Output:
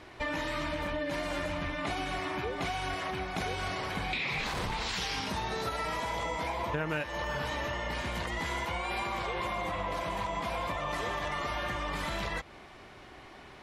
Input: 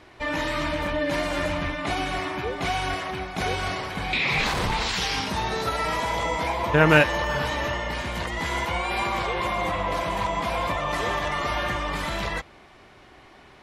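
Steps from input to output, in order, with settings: compressor 6:1, threshold -31 dBFS, peak gain reduction 18 dB

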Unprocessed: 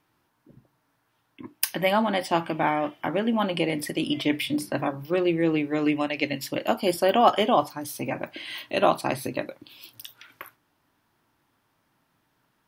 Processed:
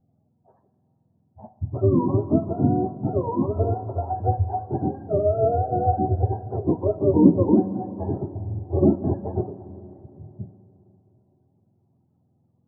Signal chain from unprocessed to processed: spectrum mirrored in octaves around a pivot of 470 Hz; inverse Chebyshev low-pass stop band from 3500 Hz, stop band 70 dB; Schroeder reverb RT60 3.5 s, combs from 32 ms, DRR 13 dB; gain +4 dB

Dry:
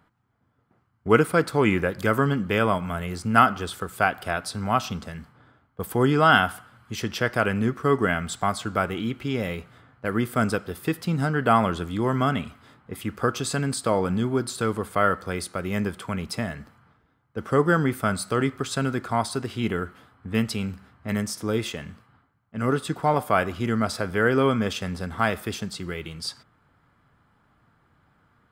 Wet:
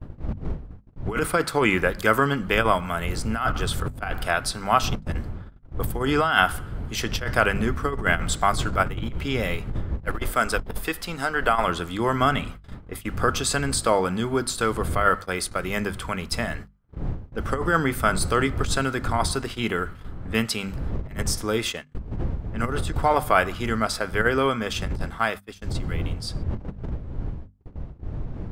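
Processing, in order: ending faded out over 5.52 s; wind noise 86 Hz -21 dBFS; gate -32 dBFS, range -30 dB; 10.07–11.68 bell 110 Hz -11 dB 2.8 oct; negative-ratio compressor -19 dBFS, ratio -0.5; low shelf 420 Hz -9 dB; notches 50/100/150/200/250 Hz; gain +3.5 dB

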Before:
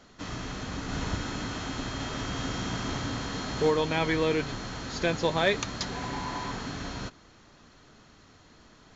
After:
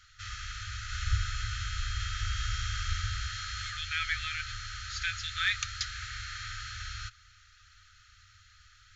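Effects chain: 1.06–3.27 low shelf 110 Hz +9.5 dB; FFT band-reject 110–1200 Hz

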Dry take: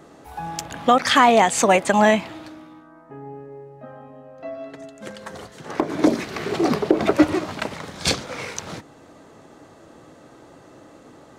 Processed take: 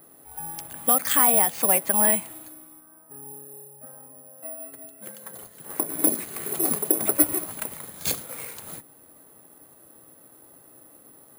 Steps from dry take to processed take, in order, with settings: careless resampling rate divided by 4×, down filtered, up zero stuff; gain -10.5 dB

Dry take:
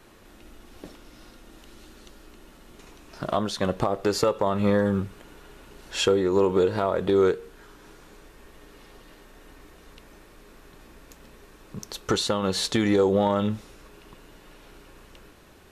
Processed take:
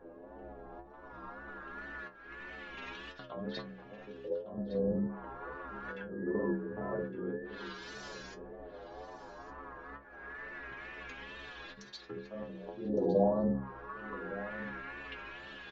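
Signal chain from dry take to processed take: local time reversal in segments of 42 ms; treble ducked by the level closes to 370 Hz, closed at -21 dBFS; Chebyshev low-pass 7500 Hz, order 10; low shelf 200 Hz -9.5 dB; in parallel at 0 dB: compressor, threshold -40 dBFS, peak gain reduction 15.5 dB; on the sum: whine 1700 Hz -42 dBFS; auto swell 0.339 s; LFO low-pass saw up 0.24 Hz 530–6000 Hz; metallic resonator 63 Hz, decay 0.53 s, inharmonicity 0.008; wow and flutter 69 cents; on a send: echo 1.161 s -14.5 dB; on the sum: gain +8 dB

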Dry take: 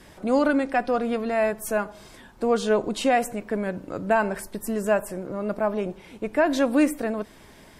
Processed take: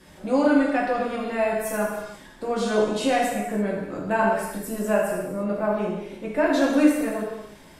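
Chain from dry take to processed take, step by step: non-linear reverb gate 0.37 s falling, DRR -4.5 dB; gain -5 dB

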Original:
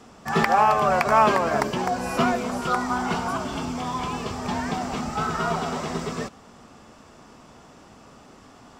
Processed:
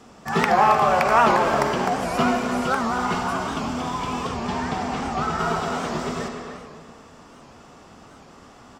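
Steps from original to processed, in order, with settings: 4.27–5.39 high shelf 11000 Hz -11.5 dB; speakerphone echo 0.3 s, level -7 dB; reverb RT60 1.9 s, pre-delay 38 ms, DRR 4 dB; record warp 78 rpm, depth 160 cents

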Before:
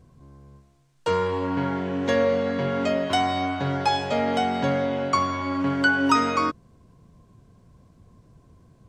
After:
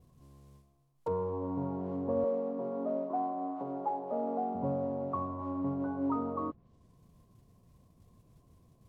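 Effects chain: Chebyshev low-pass 1200 Hz, order 5; modulation noise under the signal 17 dB; treble ducked by the level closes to 890 Hz, closed at -23.5 dBFS; 2.24–4.55 HPF 220 Hz 24 dB/oct; gain -8 dB

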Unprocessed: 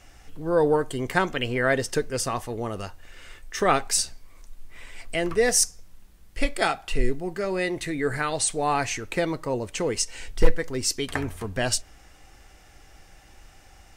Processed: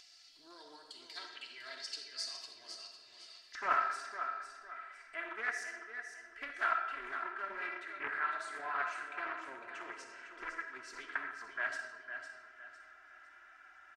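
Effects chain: band-pass 4500 Hz, Q 8.4, from 3.55 s 1500 Hz; reverb RT60 1.2 s, pre-delay 10 ms, DRR 3 dB; flange 1.4 Hz, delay 3.7 ms, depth 5.2 ms, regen -54%; upward compressor, threshold -55 dBFS; comb 3 ms, depth 85%; feedback echo 0.505 s, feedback 34%, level -8 dB; Doppler distortion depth 0.26 ms; gain +3 dB

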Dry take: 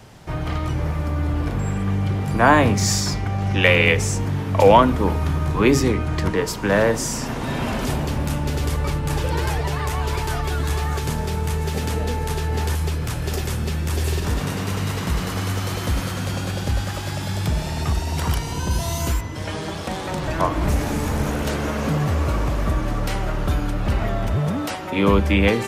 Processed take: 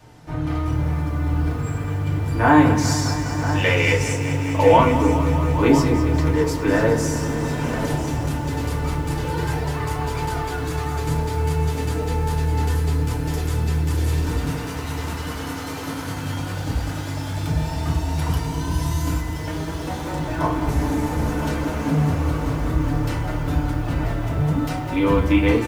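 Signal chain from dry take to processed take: 14.49–16.01 HPF 220 Hz 12 dB/oct; on a send: echo 0.99 s -11.5 dB; on the sum: FDN reverb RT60 0.35 s, low-frequency decay 1.35×, high-frequency decay 0.55×, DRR -4 dB; lo-fi delay 0.203 s, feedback 80%, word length 6-bit, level -11.5 dB; gain -8.5 dB

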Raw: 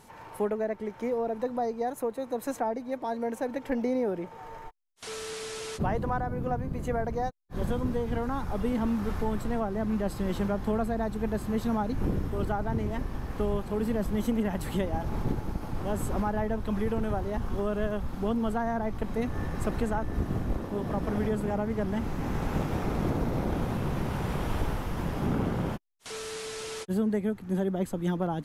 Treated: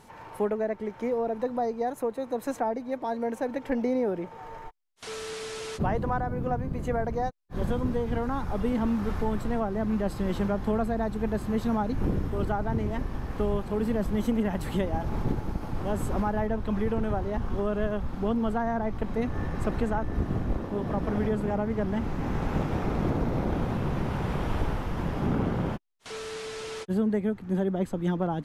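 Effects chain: high shelf 7100 Hz -6.5 dB, from 16.47 s -12 dB; gain +1.5 dB

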